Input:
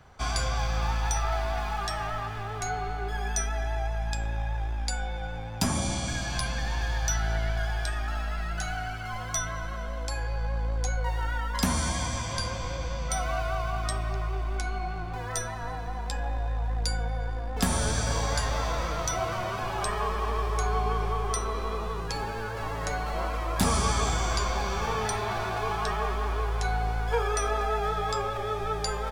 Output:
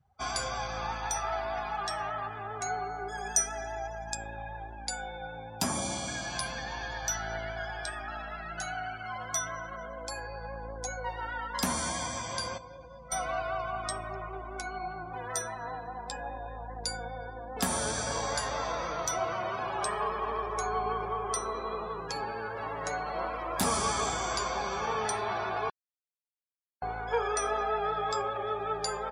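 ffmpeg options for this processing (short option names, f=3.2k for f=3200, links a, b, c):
-filter_complex "[0:a]asettb=1/sr,asplit=3[a][b][c];[a]atrim=end=2.834[d];[b]atrim=start=2.83:end=4.15,asetpts=PTS-STARTPTS,afade=t=in:d=0.004:c=qsin,afade=t=out:st=1.316:d=0.004:c=qsin,highshelf=f=5k:t=q:w=1.5:g=6[e];[c]atrim=start=4.146[f];[d][e]acrossfade=d=0.004:c1=hsin:c2=qsin[g];[g][f]acrossfade=d=0.004:c1=qsin:c2=hsin,asplit=5[h][i][j][k][l];[h]atrim=end=12.582[m];[i]atrim=start=12.578:end=13.122,asetpts=PTS-STARTPTS,volume=-8dB[n];[j]atrim=start=13.118:end=25.7,asetpts=PTS-STARTPTS,afade=t=out:st=12.578:d=0.004:c=hsin[o];[k]atrim=start=25.7:end=26.82,asetpts=PTS-STARTPTS,volume=0[p];[l]atrim=start=26.82,asetpts=PTS-STARTPTS,afade=t=in:d=0.004:c=hsin[q];[m][n]acrossfade=d=0.004:c1=hsin:c2=hsin[r];[o][p][q]concat=n=3:v=0:a=1[s];[r][s]acrossfade=d=0.004:c1=hsin:c2=hsin,afftdn=nr=25:nf=-44,highpass=f=460:p=1,equalizer=f=2.9k:t=o:w=3:g=-4.5,volume=2dB"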